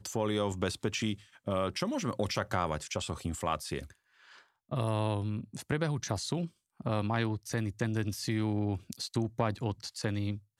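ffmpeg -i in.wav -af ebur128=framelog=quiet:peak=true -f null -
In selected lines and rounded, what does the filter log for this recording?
Integrated loudness:
  I:         -33.8 LUFS
  Threshold: -44.1 LUFS
Loudness range:
  LRA:         2.1 LU
  Threshold: -54.3 LUFS
  LRA low:   -35.4 LUFS
  LRA high:  -33.3 LUFS
True peak:
  Peak:      -16.0 dBFS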